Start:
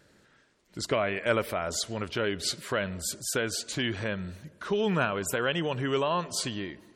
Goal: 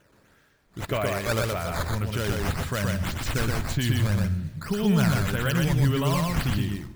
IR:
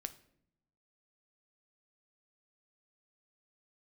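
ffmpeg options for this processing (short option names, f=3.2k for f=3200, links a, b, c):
-filter_complex "[0:a]acrusher=samples=9:mix=1:aa=0.000001:lfo=1:lforange=14.4:lforate=1.8,asubboost=boost=8:cutoff=150,asoftclip=type=tanh:threshold=-12dB,asplit=2[a][b];[1:a]atrim=start_sample=2205,adelay=122[c];[b][c]afir=irnorm=-1:irlink=0,volume=0.5dB[d];[a][d]amix=inputs=2:normalize=0"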